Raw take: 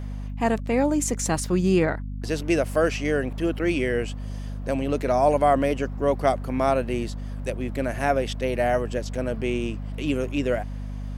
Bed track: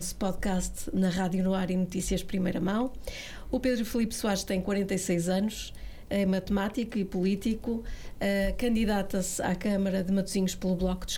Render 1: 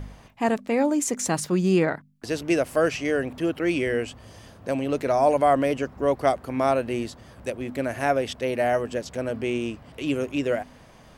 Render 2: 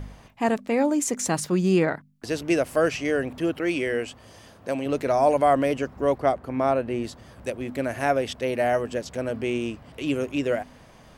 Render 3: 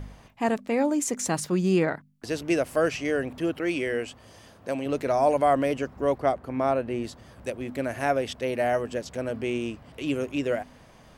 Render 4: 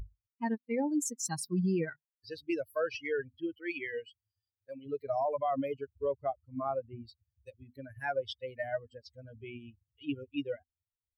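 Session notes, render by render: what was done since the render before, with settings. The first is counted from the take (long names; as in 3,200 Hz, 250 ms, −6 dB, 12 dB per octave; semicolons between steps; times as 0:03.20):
hum removal 50 Hz, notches 5
0:03.61–0:04.86: low-shelf EQ 170 Hz −8 dB; 0:06.18–0:07.04: high-shelf EQ 3,100 Hz −10.5 dB
level −2 dB
spectral dynamics exaggerated over time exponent 3; brickwall limiter −23.5 dBFS, peak gain reduction 8.5 dB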